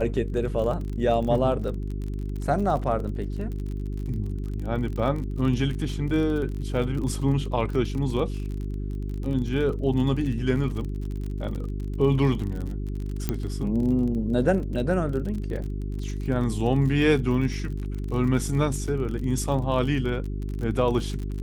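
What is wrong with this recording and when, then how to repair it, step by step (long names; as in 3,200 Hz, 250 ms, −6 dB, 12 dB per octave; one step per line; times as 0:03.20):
surface crackle 39 per second −32 dBFS
mains hum 50 Hz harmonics 8 −30 dBFS
0:13.29: click −11 dBFS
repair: click removal
hum removal 50 Hz, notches 8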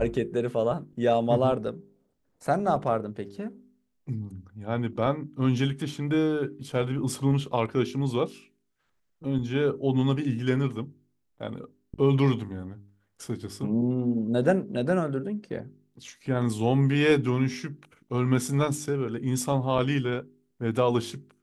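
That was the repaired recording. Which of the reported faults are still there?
none of them is left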